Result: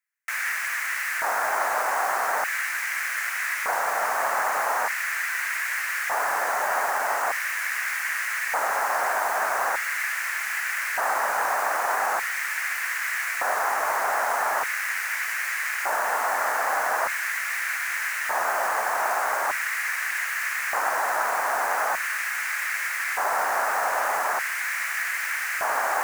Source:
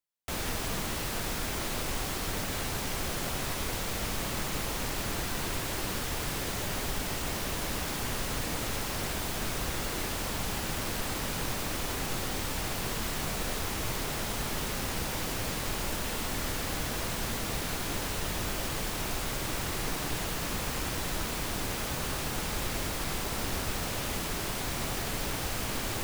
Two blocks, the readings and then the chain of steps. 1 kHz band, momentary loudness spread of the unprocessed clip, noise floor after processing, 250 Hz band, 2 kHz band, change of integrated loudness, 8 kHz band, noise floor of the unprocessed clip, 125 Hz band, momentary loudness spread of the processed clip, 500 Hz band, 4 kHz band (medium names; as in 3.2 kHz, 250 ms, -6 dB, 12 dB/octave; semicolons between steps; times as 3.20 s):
+13.5 dB, 0 LU, -29 dBFS, -15.0 dB, +14.0 dB, +7.5 dB, +2.0 dB, -34 dBFS, under -25 dB, 2 LU, +6.0 dB, -3.5 dB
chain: FFT filter 110 Hz 0 dB, 310 Hz -3 dB, 1.7 kHz +9 dB, 3.4 kHz -16 dB, 6.4 kHz -4 dB; LFO high-pass square 0.41 Hz 720–2100 Hz; trim +6 dB